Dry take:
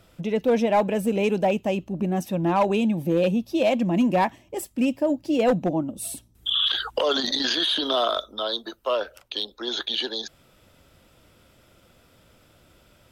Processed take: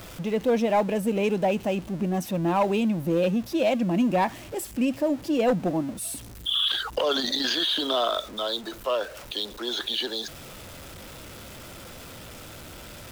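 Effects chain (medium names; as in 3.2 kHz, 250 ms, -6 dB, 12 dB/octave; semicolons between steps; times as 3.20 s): jump at every zero crossing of -35 dBFS; trim -2.5 dB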